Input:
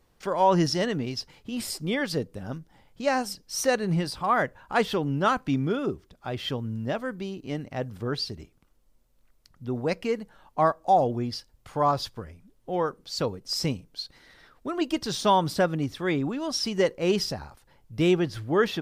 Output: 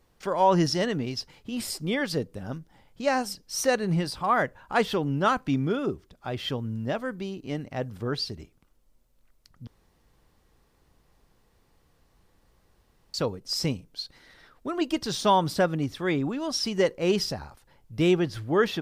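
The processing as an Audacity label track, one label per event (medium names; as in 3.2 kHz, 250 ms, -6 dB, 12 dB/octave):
9.670000	13.140000	room tone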